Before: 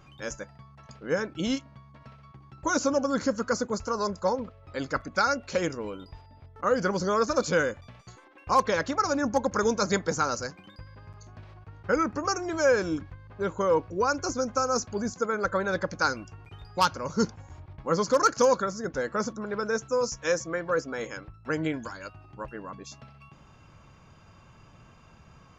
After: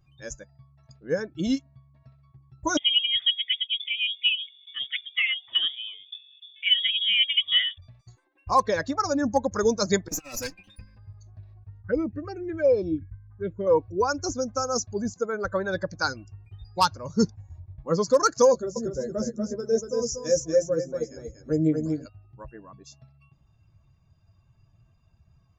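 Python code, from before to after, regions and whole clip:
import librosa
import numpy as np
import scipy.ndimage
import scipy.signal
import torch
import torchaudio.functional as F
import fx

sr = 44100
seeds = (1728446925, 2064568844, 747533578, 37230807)

y = fx.chain(x, sr, fx.dynamic_eq(hz=1400.0, q=2.0, threshold_db=-40.0, ratio=4.0, max_db=-4),
    fx.freq_invert(carrier_hz=3500),
    fx.highpass(hz=91.0, slope=12), at=(2.77, 7.78))
y = fx.chain(y, sr, fx.lower_of_two(delay_ms=3.8),
    fx.peak_eq(hz=2500.0, db=13.0, octaves=0.22),
    fx.over_compress(threshold_db=-32.0, ratio=-0.5), at=(10.08, 10.98))
y = fx.chain(y, sr, fx.lowpass(hz=4100.0, slope=12),
    fx.env_phaser(low_hz=450.0, high_hz=1600.0, full_db=-21.0), at=(11.81, 13.67))
y = fx.chain(y, sr, fx.band_shelf(hz=1800.0, db=-10.0, octaves=2.5),
    fx.doubler(ms=13.0, db=-4.5),
    fx.echo_feedback(ms=238, feedback_pct=21, wet_db=-3.5), at=(18.52, 22.06))
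y = fx.bin_expand(y, sr, power=1.5)
y = fx.peak_eq(y, sr, hz=1400.0, db=-5.0, octaves=0.74)
y = y * 10.0 ** (5.5 / 20.0)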